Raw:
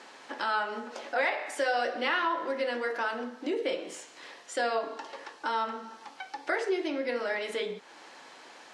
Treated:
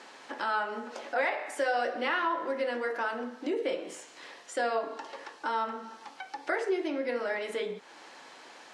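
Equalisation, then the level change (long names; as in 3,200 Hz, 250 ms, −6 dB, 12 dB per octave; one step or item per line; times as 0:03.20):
dynamic equaliser 4,200 Hz, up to −5 dB, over −48 dBFS, Q 0.76
0.0 dB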